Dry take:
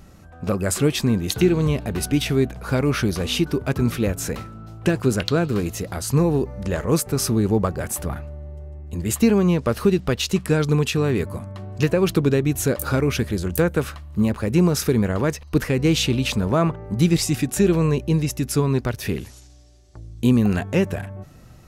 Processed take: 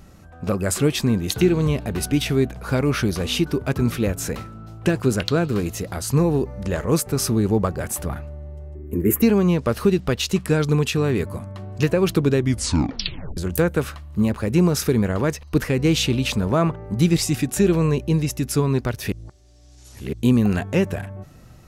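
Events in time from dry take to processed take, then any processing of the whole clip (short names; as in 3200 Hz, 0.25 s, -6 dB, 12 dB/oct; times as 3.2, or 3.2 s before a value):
8.75–9.22 EQ curve 150 Hz 0 dB, 250 Hz +9 dB, 420 Hz +13 dB, 660 Hz -9 dB, 1300 Hz 0 dB, 2200 Hz +1 dB, 4000 Hz -22 dB, 9000 Hz -3 dB, 13000 Hz +12 dB
12.36 tape stop 1.01 s
19.12–20.13 reverse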